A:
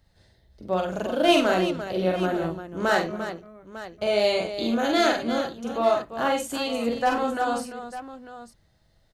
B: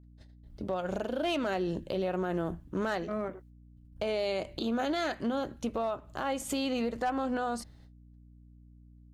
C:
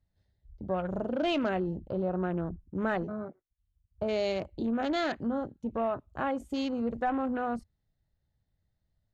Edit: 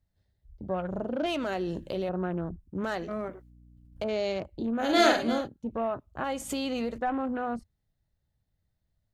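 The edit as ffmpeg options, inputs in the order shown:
-filter_complex "[1:a]asplit=3[a][b][c];[2:a]asplit=5[d][e][f][g][h];[d]atrim=end=1.262[i];[a]atrim=start=1.258:end=2.092[j];[e]atrim=start=2.088:end=2.842[k];[b]atrim=start=2.838:end=4.042[l];[f]atrim=start=4.038:end=5[m];[0:a]atrim=start=4.76:end=5.49[n];[g]atrim=start=5.25:end=6.242[o];[c]atrim=start=6.238:end=6.982[p];[h]atrim=start=6.978[q];[i][j]acrossfade=d=0.004:c1=hsin:c2=hsin[r];[r][k]acrossfade=d=0.004:c1=hsin:c2=hsin[s];[s][l]acrossfade=d=0.004:c1=hsin:c2=hsin[t];[t][m]acrossfade=d=0.004:c1=hsin:c2=hsin[u];[u][n]acrossfade=d=0.24:c1=tri:c2=tri[v];[v][o]acrossfade=d=0.24:c1=tri:c2=tri[w];[w][p]acrossfade=d=0.004:c1=hsin:c2=hsin[x];[x][q]acrossfade=d=0.004:c1=hsin:c2=hsin"

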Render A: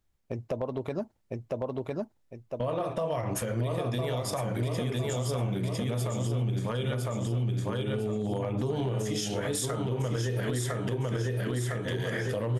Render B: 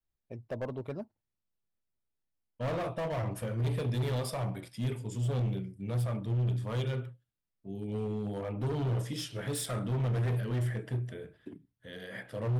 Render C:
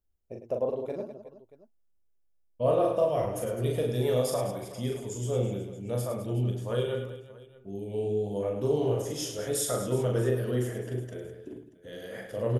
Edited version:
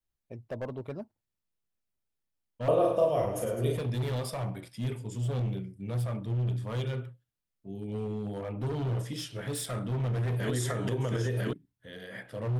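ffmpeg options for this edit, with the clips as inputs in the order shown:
-filter_complex "[1:a]asplit=3[a][b][c];[a]atrim=end=2.682[d];[2:a]atrim=start=2.678:end=3.772[e];[b]atrim=start=3.768:end=10.402[f];[0:a]atrim=start=10.398:end=11.532[g];[c]atrim=start=11.528[h];[d][e]acrossfade=d=0.004:c1=hsin:c2=hsin[i];[i][f]acrossfade=d=0.004:c1=hsin:c2=hsin[j];[j][g]acrossfade=d=0.004:c1=hsin:c2=hsin[k];[k][h]acrossfade=d=0.004:c1=hsin:c2=hsin"

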